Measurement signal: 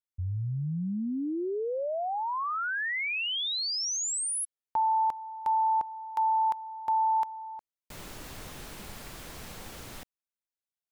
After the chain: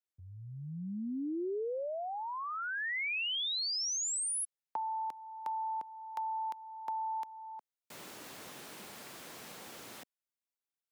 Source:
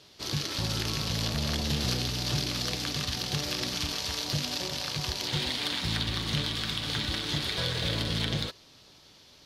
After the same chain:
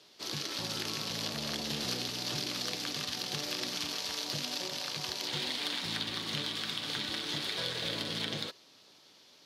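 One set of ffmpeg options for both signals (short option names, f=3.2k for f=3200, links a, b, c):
-filter_complex "[0:a]highpass=220,acrossover=split=460|1900[a][b][c];[b]acompressor=threshold=-37dB:ratio=3:release=668:knee=2.83:detection=peak[d];[a][d][c]amix=inputs=3:normalize=0,volume=-3.5dB"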